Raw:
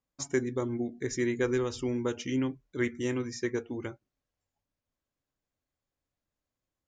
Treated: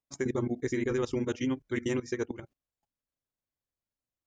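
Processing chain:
output level in coarse steps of 17 dB
time stretch by overlap-add 0.62×, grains 87 ms
level +6.5 dB

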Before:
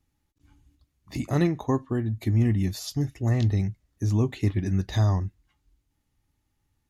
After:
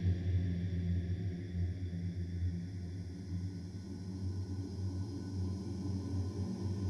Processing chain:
source passing by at 0:02.48, 42 m/s, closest 16 metres
extreme stretch with random phases 17×, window 1.00 s, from 0:03.48

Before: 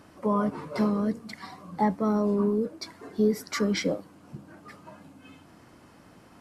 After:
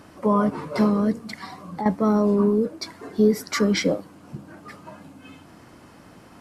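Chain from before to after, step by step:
0:01.39–0:01.86: downward compressor 2.5 to 1, threshold −37 dBFS, peak gain reduction 12 dB
level +5.5 dB

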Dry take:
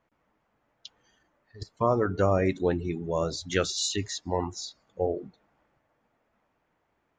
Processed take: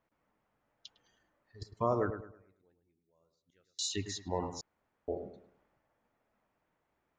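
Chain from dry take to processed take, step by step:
0:02.10–0:03.79: gate with flip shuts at −30 dBFS, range −40 dB
delay with a low-pass on its return 105 ms, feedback 33%, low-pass 2,100 Hz, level −9 dB
0:04.61–0:05.08: fill with room tone
level −6.5 dB

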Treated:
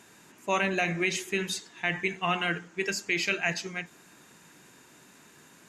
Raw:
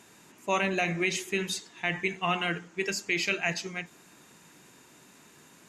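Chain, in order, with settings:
parametric band 1,600 Hz +3.5 dB 0.34 octaves

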